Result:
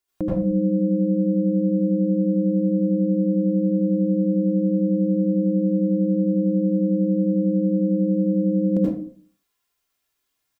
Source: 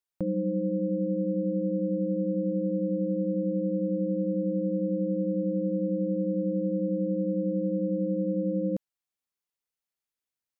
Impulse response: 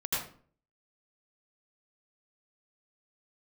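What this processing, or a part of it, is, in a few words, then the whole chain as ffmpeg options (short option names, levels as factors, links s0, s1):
microphone above a desk: -filter_complex "[0:a]aecho=1:1:2.9:0.5[s0];[1:a]atrim=start_sample=2205[s1];[s0][s1]afir=irnorm=-1:irlink=0,volume=2.66"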